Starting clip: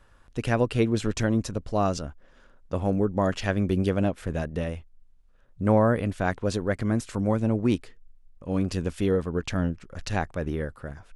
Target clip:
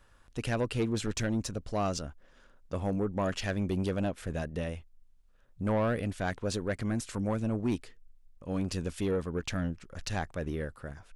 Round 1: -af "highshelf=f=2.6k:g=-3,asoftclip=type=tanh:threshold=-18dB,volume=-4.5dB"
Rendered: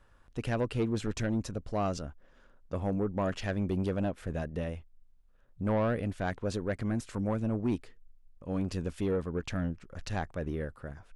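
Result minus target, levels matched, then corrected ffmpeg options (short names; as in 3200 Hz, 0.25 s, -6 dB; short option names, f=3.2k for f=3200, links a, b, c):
4000 Hz band -4.5 dB
-af "highshelf=f=2.6k:g=5,asoftclip=type=tanh:threshold=-18dB,volume=-4.5dB"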